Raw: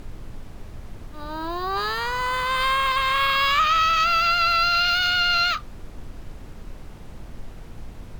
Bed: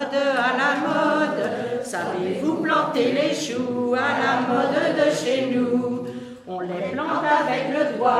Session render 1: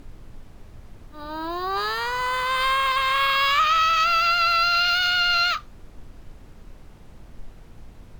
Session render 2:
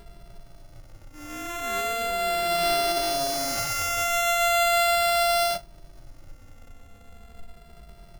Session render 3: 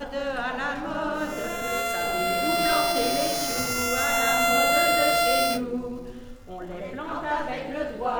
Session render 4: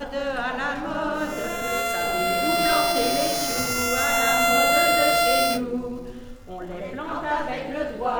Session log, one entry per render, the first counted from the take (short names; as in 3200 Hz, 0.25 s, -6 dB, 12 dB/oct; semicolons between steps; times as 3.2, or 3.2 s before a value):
noise print and reduce 6 dB
sample sorter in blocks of 64 samples; endless flanger 2.6 ms -0.38 Hz
add bed -8.5 dB
gain +2 dB